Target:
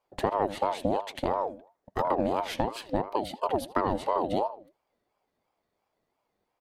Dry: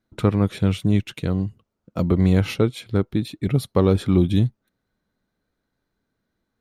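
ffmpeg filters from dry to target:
ffmpeg -i in.wav -filter_complex "[0:a]acompressor=threshold=-21dB:ratio=6,asplit=2[link_01][link_02];[link_02]adelay=79,lowpass=frequency=2300:poles=1,volume=-13.5dB,asplit=2[link_03][link_04];[link_04]adelay=79,lowpass=frequency=2300:poles=1,volume=0.36,asplit=2[link_05][link_06];[link_06]adelay=79,lowpass=frequency=2300:poles=1,volume=0.36[link_07];[link_01][link_03][link_05][link_07]amix=inputs=4:normalize=0,aeval=exprs='val(0)*sin(2*PI*600*n/s+600*0.35/2.9*sin(2*PI*2.9*n/s))':channel_layout=same" out.wav

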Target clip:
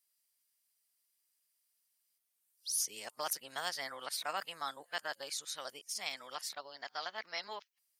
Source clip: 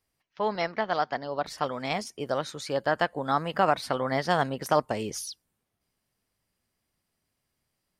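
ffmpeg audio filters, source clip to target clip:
ffmpeg -i in.wav -af "areverse,aderivative,volume=2.5dB" out.wav

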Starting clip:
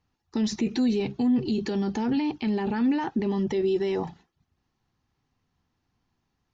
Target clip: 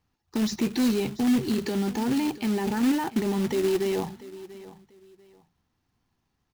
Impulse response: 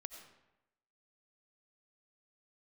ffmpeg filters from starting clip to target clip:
-af "aecho=1:1:690|1380:0.133|0.0333,acrusher=bits=3:mode=log:mix=0:aa=0.000001"

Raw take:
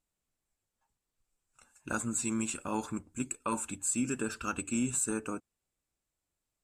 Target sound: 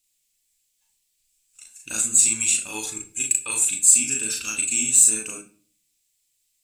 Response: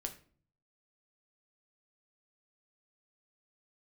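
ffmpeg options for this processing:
-filter_complex "[0:a]asettb=1/sr,asplit=3[link_01][link_02][link_03];[link_01]atrim=end=2.684[link_04];[link_02]atrim=start=2.68:end=3.65,asetpts=PTS-STARTPTS,afade=type=in:duration=0.004:curve=qsin,afade=type=out:start_time=0.966:duration=0.004:curve=qsin,aecho=1:1:2.4:0.57,atrim=end_sample=42777[link_05];[link_03]atrim=start=3.646[link_06];[link_04][link_05]acrossfade=duration=0.004:curve1=hsin:curve2=qsin[link_07];[link_07][link_06]acrossfade=duration=0.004:curve1=qsin:curve2=hsin,asplit=2[link_08][link_09];[1:a]atrim=start_sample=2205,adelay=37[link_10];[link_09][link_10]afir=irnorm=-1:irlink=0,volume=0.5dB[link_11];[link_08][link_11]amix=inputs=2:normalize=0,aexciter=amount=8.6:drive=6.5:freq=2000,volume=-7dB"

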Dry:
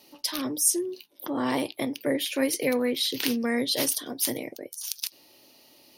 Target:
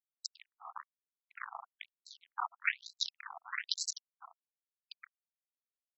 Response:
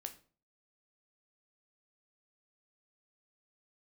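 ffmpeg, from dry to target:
-af "afftfilt=real='hypot(re,im)*cos(2*PI*random(0))':imag='hypot(re,im)*sin(2*PI*random(1))':win_size=512:overlap=0.75,acrusher=bits=3:mix=0:aa=0.5,equalizer=frequency=125:width_type=o:width=1:gain=7,equalizer=frequency=250:width_type=o:width=1:gain=4,equalizer=frequency=2000:width_type=o:width=1:gain=5,equalizer=frequency=8000:width_type=o:width=1:gain=6,afftfilt=real='re*between(b*sr/1024,930*pow(5700/930,0.5+0.5*sin(2*PI*1.1*pts/sr))/1.41,930*pow(5700/930,0.5+0.5*sin(2*PI*1.1*pts/sr))*1.41)':imag='im*between(b*sr/1024,930*pow(5700/930,0.5+0.5*sin(2*PI*1.1*pts/sr))/1.41,930*pow(5700/930,0.5+0.5*sin(2*PI*1.1*pts/sr))*1.41)':win_size=1024:overlap=0.75,volume=2.5dB"

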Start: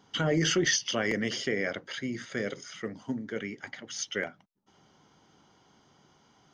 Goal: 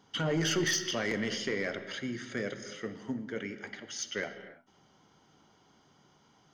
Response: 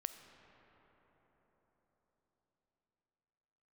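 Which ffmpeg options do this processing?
-filter_complex "[0:a]aeval=exprs='0.2*sin(PI/2*1.58*val(0)/0.2)':channel_layout=same[link_01];[1:a]atrim=start_sample=2205,afade=type=out:start_time=0.39:duration=0.01,atrim=end_sample=17640[link_02];[link_01][link_02]afir=irnorm=-1:irlink=0,volume=-7dB"

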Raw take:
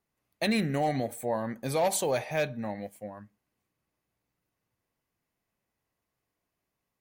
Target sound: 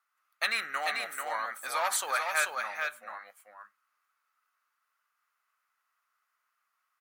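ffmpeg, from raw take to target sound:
ffmpeg -i in.wav -af "highpass=frequency=1300:width_type=q:width=8.6,aecho=1:1:440:0.596" out.wav

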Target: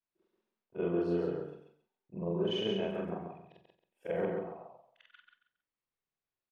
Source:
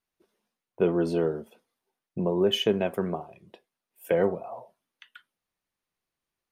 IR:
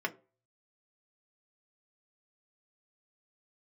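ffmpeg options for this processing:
-filter_complex "[0:a]afftfilt=real='re':imag='-im':win_size=4096:overlap=0.75,lowpass=4000,asplit=2[link_01][link_02];[link_02]aecho=0:1:136|272|408:0.631|0.158|0.0394[link_03];[link_01][link_03]amix=inputs=2:normalize=0,volume=-5dB"

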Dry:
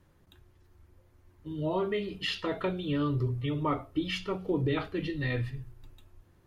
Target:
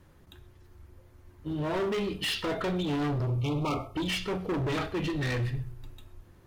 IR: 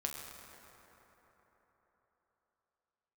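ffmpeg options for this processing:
-filter_complex "[0:a]asoftclip=type=hard:threshold=-33.5dB,asettb=1/sr,asplit=3[link_01][link_02][link_03];[link_01]atrim=end=3.274[link_04];[link_02]atrim=start=3.27:end=3.95,asetpts=PTS-STARTPTS,afade=type=in:duration=0.004:curve=qsin,afade=type=out:start_time=0.676:duration=0.004:curve=qsin,asuperstop=centerf=1700:order=20:qfactor=2.3[link_05];[link_03]atrim=start=3.946[link_06];[link_04][link_05]acrossfade=duration=0.004:curve1=hsin:curve2=qsin[link_07];[link_07][link_06]acrossfade=duration=0.004:curve1=qsin:curve2=hsin,asplit=2[link_08][link_09];[1:a]atrim=start_sample=2205,atrim=end_sample=6174[link_10];[link_09][link_10]afir=irnorm=-1:irlink=0,volume=-6dB[link_11];[link_08][link_11]amix=inputs=2:normalize=0,volume=3dB"

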